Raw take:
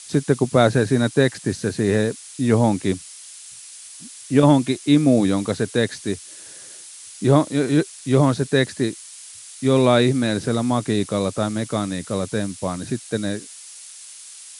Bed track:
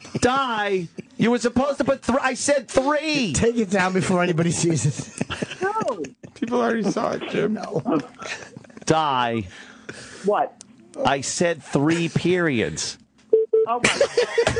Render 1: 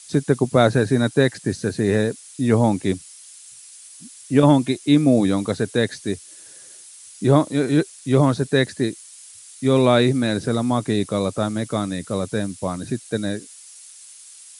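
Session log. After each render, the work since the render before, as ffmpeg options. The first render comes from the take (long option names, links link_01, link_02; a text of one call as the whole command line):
ffmpeg -i in.wav -af "afftdn=noise_reduction=6:noise_floor=-41" out.wav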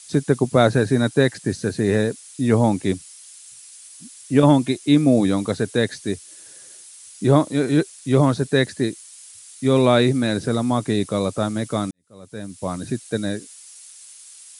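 ffmpeg -i in.wav -filter_complex "[0:a]asplit=2[link_01][link_02];[link_01]atrim=end=11.91,asetpts=PTS-STARTPTS,afade=type=out:start_time=11.906:duration=0.004:curve=hsin[link_03];[link_02]atrim=start=11.91,asetpts=PTS-STARTPTS,afade=type=in:duration=0.82:curve=qua[link_04];[link_03][link_04]concat=n=2:v=0:a=1" out.wav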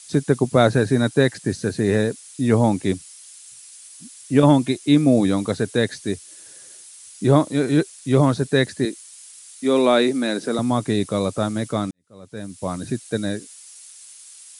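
ffmpeg -i in.wav -filter_complex "[0:a]asettb=1/sr,asplit=3[link_01][link_02][link_03];[link_01]atrim=end=8.854[link_04];[link_02]atrim=start=8.85:end=10.59,asetpts=PTS-STARTPTS,afade=type=in:duration=0.004:curve=qsin,afade=type=out:start_time=1.736:duration=0.004:curve=qsin,highpass=frequency=220:width=0.5412,highpass=frequency=220:width=1.3066[link_05];[link_03]atrim=start=10.586[link_06];[link_04][link_05]acrossfade=duration=0.004:curve1=hsin:curve2=qsin[link_07];[link_07][link_06]acrossfade=duration=0.004:curve1=qsin:curve2=hsin,asettb=1/sr,asplit=3[link_08][link_09][link_10];[link_08]atrim=end=11.714[link_11];[link_09]atrim=start=11.71:end=12.37,asetpts=PTS-STARTPTS,afade=type=in:duration=0.004:curve=qsin,afade=type=out:start_time=0.656:duration=0.004:curve=qsin,highshelf=frequency=9000:gain=-10[link_12];[link_10]atrim=start=12.366[link_13];[link_11][link_12]acrossfade=duration=0.004:curve1=hsin:curve2=qsin[link_14];[link_14][link_13]acrossfade=duration=0.004:curve1=qsin:curve2=hsin" out.wav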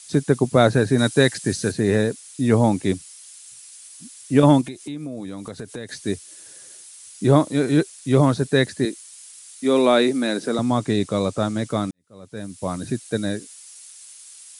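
ffmpeg -i in.wav -filter_complex "[0:a]asettb=1/sr,asplit=3[link_01][link_02][link_03];[link_01]atrim=end=0.984[link_04];[link_02]atrim=start=0.98:end=1.72,asetpts=PTS-STARTPTS,afade=type=in:duration=0.004:curve=qsin,afade=type=out:start_time=0.736:duration=0.004:curve=qsin,highshelf=frequency=2400:gain=7.5[link_05];[link_03]atrim=start=1.716[link_06];[link_04][link_05]acrossfade=duration=0.004:curve1=hsin:curve2=qsin[link_07];[link_07][link_06]acrossfade=duration=0.004:curve1=qsin:curve2=hsin,asettb=1/sr,asplit=3[link_08][link_09][link_10];[link_08]atrim=end=4.614[link_11];[link_09]atrim=start=4.61:end=5.89,asetpts=PTS-STARTPTS,afade=type=in:duration=0.004:curve=qsin,afade=type=out:start_time=1.276:duration=0.004:curve=qsin,acompressor=threshold=-30dB:ratio=5:attack=3.2:release=140:knee=1:detection=peak[link_12];[link_10]atrim=start=5.886[link_13];[link_11][link_12]acrossfade=duration=0.004:curve1=hsin:curve2=qsin[link_14];[link_14][link_13]acrossfade=duration=0.004:curve1=qsin:curve2=hsin,asettb=1/sr,asplit=3[link_15][link_16][link_17];[link_15]atrim=end=10.514[link_18];[link_16]atrim=start=10.51:end=11.7,asetpts=PTS-STARTPTS,afade=type=in:duration=0.004:curve=qsin,afade=type=out:start_time=1.186:duration=0.004:curve=qsin,lowpass=frequency=9100:width=0.5412,lowpass=frequency=9100:width=1.3066[link_19];[link_17]atrim=start=11.696[link_20];[link_18][link_19]acrossfade=duration=0.004:curve1=hsin:curve2=qsin[link_21];[link_21][link_20]acrossfade=duration=0.004:curve1=qsin:curve2=hsin" out.wav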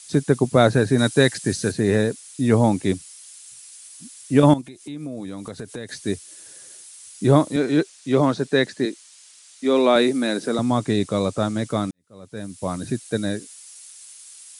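ffmpeg -i in.wav -filter_complex "[0:a]asettb=1/sr,asplit=3[link_01][link_02][link_03];[link_01]atrim=end=7.564[link_04];[link_02]atrim=start=7.56:end=9.96,asetpts=PTS-STARTPTS,afade=type=in:duration=0.004:curve=qsin,afade=type=out:start_time=2.396:duration=0.004:curve=qsin,highpass=190,lowpass=6700[link_05];[link_03]atrim=start=9.956[link_06];[link_04][link_05]acrossfade=duration=0.004:curve1=hsin:curve2=qsin[link_07];[link_07][link_06]acrossfade=duration=0.004:curve1=qsin:curve2=hsin,asplit=2[link_08][link_09];[link_08]atrim=end=4.54,asetpts=PTS-STARTPTS,afade=type=out:start_time=4.536:duration=0.004:curve=hsin:silence=0.199526[link_10];[link_09]atrim=start=4.54,asetpts=PTS-STARTPTS,afade=type=in:duration=0.52:silence=0.199526[link_11];[link_10][link_11]concat=n=2:v=0:a=1" out.wav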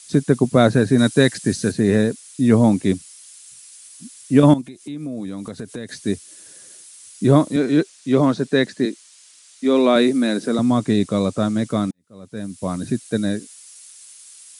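ffmpeg -i in.wav -af "equalizer=frequency=220:width_type=o:width=0.89:gain=5.5,bandreject=frequency=840:width=14" out.wav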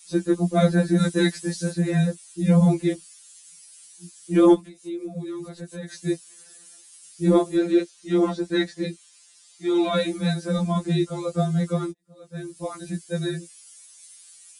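ffmpeg -i in.wav -af "aeval=exprs='val(0)*sin(2*PI*50*n/s)':channel_layout=same,afftfilt=real='re*2.83*eq(mod(b,8),0)':imag='im*2.83*eq(mod(b,8),0)':win_size=2048:overlap=0.75" out.wav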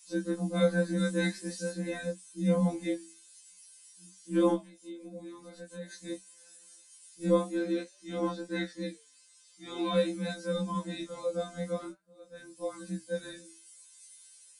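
ffmpeg -i in.wav -af "flanger=delay=7.9:depth=5.8:regen=-78:speed=0.48:shape=sinusoidal,afftfilt=real='re*1.73*eq(mod(b,3),0)':imag='im*1.73*eq(mod(b,3),0)':win_size=2048:overlap=0.75" out.wav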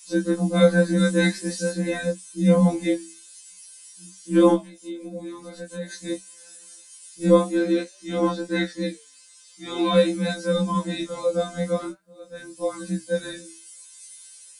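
ffmpeg -i in.wav -af "volume=9.5dB" out.wav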